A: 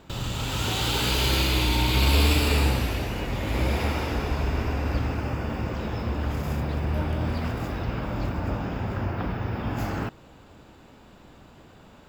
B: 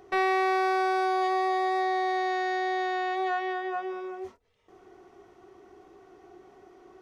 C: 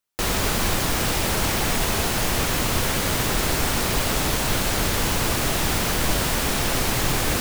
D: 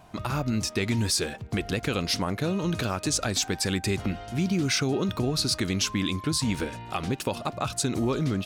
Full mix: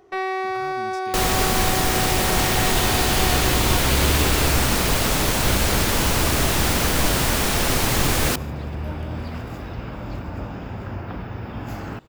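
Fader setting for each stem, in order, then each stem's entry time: -2.5, -0.5, +2.0, -15.5 dB; 1.90, 0.00, 0.95, 0.30 s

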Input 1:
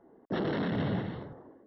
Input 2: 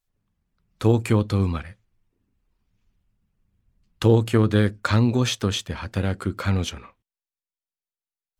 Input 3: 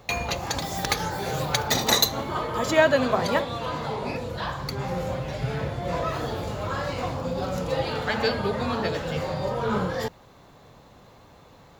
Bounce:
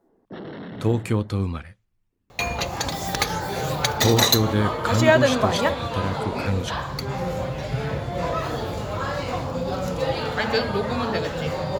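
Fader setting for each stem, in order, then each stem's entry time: -5.0, -3.0, +2.0 dB; 0.00, 0.00, 2.30 s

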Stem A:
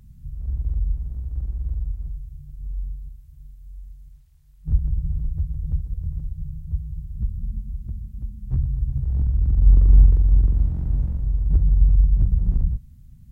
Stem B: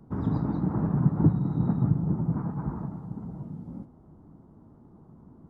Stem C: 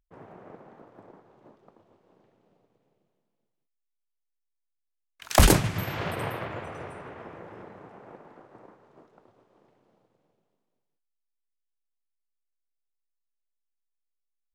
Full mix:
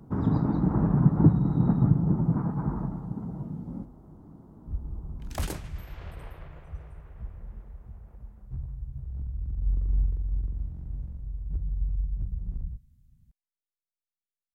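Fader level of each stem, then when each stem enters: -13.5, +2.5, -17.0 dB; 0.00, 0.00, 0.00 s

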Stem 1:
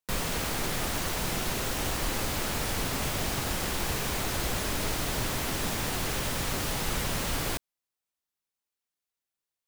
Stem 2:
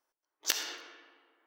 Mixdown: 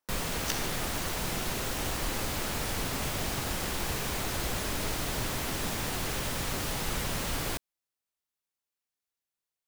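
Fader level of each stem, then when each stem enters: -2.0, -5.0 dB; 0.00, 0.00 s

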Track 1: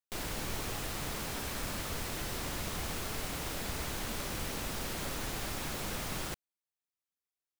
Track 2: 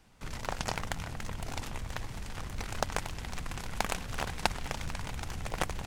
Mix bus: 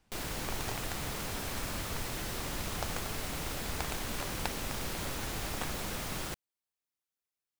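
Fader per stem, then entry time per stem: 0.0, -8.5 dB; 0.00, 0.00 s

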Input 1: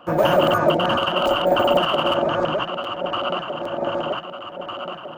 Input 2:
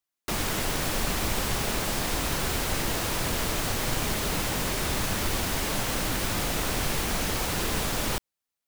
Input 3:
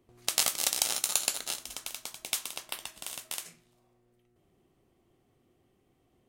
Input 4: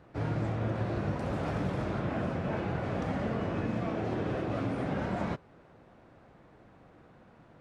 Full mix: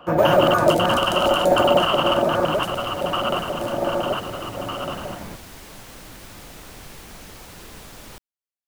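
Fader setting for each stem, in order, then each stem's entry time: +1.0, -13.0, -11.0, -3.5 dB; 0.00, 0.00, 0.30, 0.00 s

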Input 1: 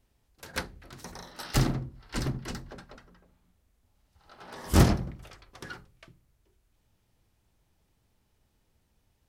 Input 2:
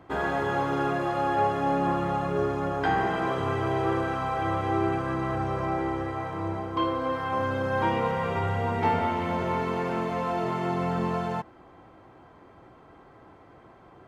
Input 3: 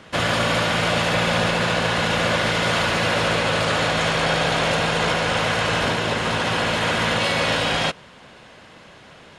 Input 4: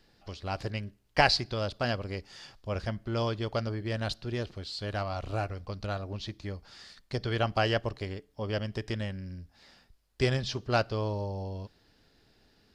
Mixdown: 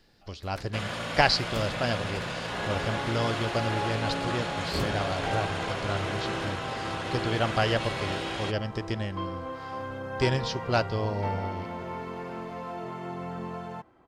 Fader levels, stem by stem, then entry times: -13.5, -8.5, -13.5, +1.5 dB; 0.00, 2.40, 0.60, 0.00 s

